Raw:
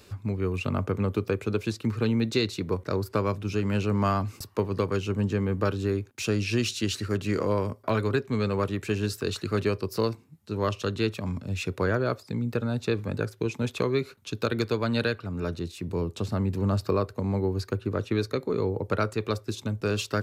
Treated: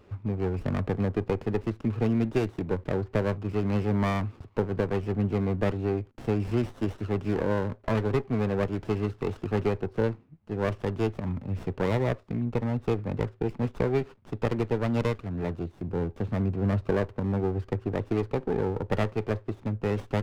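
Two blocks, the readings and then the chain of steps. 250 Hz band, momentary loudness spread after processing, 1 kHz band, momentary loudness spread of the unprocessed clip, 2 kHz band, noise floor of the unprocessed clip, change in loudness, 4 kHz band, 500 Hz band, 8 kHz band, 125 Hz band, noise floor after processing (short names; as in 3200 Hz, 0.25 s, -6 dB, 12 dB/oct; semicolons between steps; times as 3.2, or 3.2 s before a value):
0.0 dB, 5 LU, -2.0 dB, 5 LU, -4.0 dB, -54 dBFS, -1.0 dB, -11.0 dB, -0.5 dB, under -10 dB, 0.0 dB, -56 dBFS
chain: LPF 2700 Hz 24 dB/oct; running maximum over 17 samples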